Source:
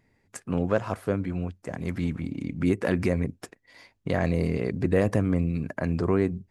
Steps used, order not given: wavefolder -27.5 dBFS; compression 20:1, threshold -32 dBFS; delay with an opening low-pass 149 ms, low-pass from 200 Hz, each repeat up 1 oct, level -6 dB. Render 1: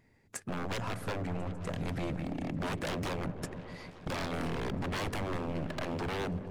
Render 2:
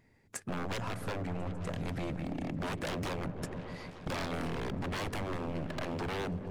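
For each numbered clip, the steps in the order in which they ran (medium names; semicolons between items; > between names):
wavefolder > compression > delay with an opening low-pass; wavefolder > delay with an opening low-pass > compression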